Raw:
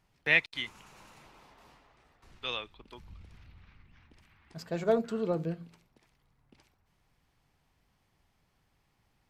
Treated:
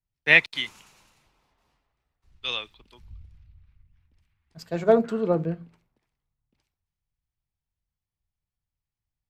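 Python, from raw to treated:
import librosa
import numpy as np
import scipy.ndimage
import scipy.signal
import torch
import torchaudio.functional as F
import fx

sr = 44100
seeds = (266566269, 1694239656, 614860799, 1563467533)

y = fx.band_widen(x, sr, depth_pct=70)
y = F.gain(torch.from_numpy(y), 2.0).numpy()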